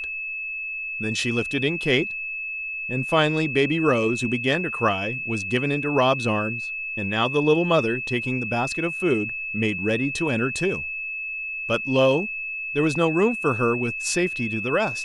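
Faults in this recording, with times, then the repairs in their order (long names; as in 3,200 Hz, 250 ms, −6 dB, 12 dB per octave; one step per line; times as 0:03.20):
whistle 2,600 Hz −28 dBFS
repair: notch filter 2,600 Hz, Q 30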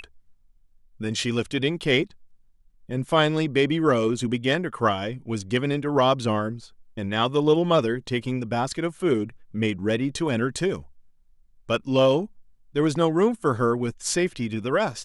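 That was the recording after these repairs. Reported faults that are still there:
none of them is left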